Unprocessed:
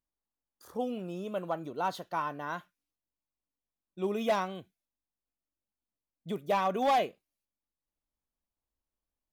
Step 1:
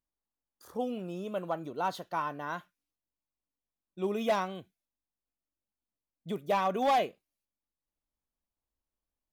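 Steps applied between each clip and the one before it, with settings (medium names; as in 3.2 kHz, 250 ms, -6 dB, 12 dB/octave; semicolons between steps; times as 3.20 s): no audible change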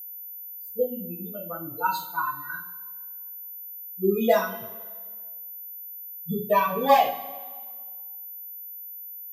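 expander on every frequency bin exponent 3; two-slope reverb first 0.39 s, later 1.7 s, from -18 dB, DRR -9 dB; whistle 14 kHz -40 dBFS; trim +3 dB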